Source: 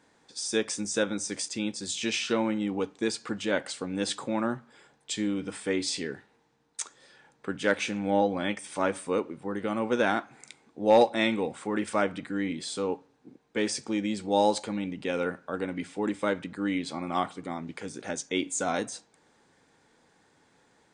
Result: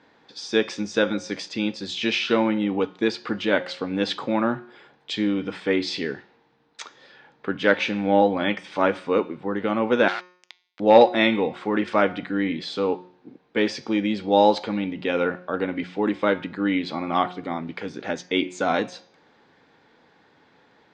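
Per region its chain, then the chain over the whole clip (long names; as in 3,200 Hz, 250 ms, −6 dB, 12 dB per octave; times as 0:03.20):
0:10.08–0:10.80: hold until the input has moved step −30 dBFS + high-pass filter 1,500 Hz + saturating transformer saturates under 2,300 Hz
whole clip: low-pass filter 4,400 Hz 24 dB per octave; low-shelf EQ 91 Hz −8.5 dB; hum removal 180.3 Hz, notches 38; level +7 dB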